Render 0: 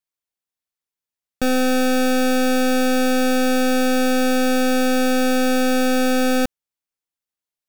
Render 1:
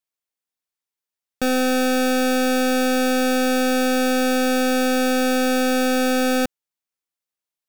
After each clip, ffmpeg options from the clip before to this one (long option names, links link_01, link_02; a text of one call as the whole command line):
ffmpeg -i in.wav -af "lowshelf=frequency=130:gain=-7.5" out.wav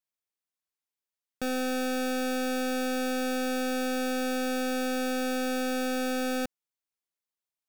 ffmpeg -i in.wav -af "alimiter=limit=-18.5dB:level=0:latency=1,volume=-5dB" out.wav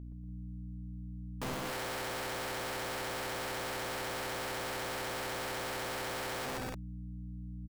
ffmpeg -i in.wav -af "aeval=exprs='val(0)+0.00891*(sin(2*PI*60*n/s)+sin(2*PI*2*60*n/s)/2+sin(2*PI*3*60*n/s)/3+sin(2*PI*4*60*n/s)/4+sin(2*PI*5*60*n/s)/5)':channel_layout=same,aecho=1:1:122.4|239.1|288.6:0.631|0.355|0.251,aeval=exprs='(mod(33.5*val(0)+1,2)-1)/33.5':channel_layout=same,volume=-2.5dB" out.wav